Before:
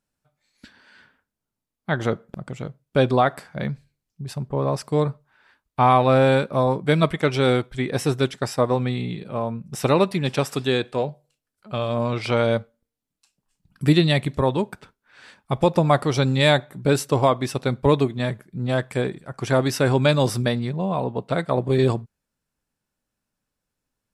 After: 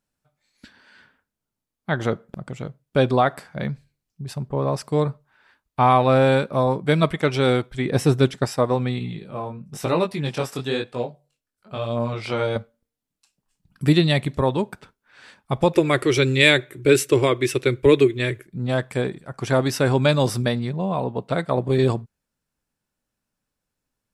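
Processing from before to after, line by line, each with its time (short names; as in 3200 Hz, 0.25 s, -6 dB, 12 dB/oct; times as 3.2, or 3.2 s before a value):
7.85–8.45 low shelf 440 Hz +6 dB
8.99–12.56 chorus 1 Hz, delay 17 ms, depth 6.7 ms
15.73–18.47 EQ curve 130 Hz 0 dB, 190 Hz -15 dB, 360 Hz +11 dB, 760 Hz -11 dB, 2300 Hz +10 dB, 4600 Hz 0 dB, 6700 Hz +5 dB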